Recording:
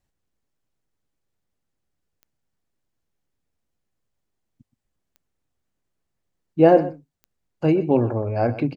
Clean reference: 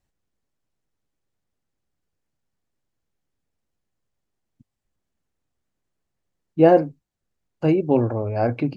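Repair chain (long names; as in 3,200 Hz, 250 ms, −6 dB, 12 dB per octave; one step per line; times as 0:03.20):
click removal
echo removal 124 ms −16 dB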